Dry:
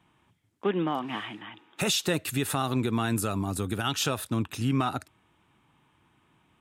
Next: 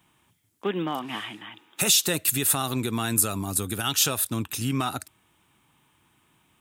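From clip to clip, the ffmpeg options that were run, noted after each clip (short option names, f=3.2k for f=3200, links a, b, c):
-af "aemphasis=mode=production:type=75kf,volume=-1dB"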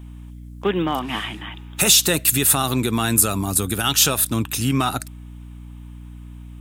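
-af "acontrast=70,aeval=exprs='val(0)+0.0158*(sin(2*PI*60*n/s)+sin(2*PI*2*60*n/s)/2+sin(2*PI*3*60*n/s)/3+sin(2*PI*4*60*n/s)/4+sin(2*PI*5*60*n/s)/5)':c=same"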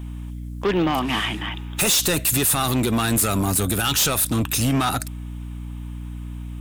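-filter_complex "[0:a]asplit=2[a][b];[b]alimiter=limit=-13.5dB:level=0:latency=1:release=39,volume=2dB[c];[a][c]amix=inputs=2:normalize=0,asoftclip=type=tanh:threshold=-14dB,volume=-1.5dB"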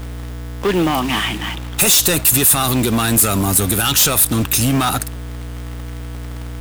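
-filter_complex "[0:a]acrossover=split=1700[a][b];[a]acrusher=bits=5:mix=0:aa=0.000001[c];[b]crystalizer=i=0.5:c=0[d];[c][d]amix=inputs=2:normalize=0,volume=4dB"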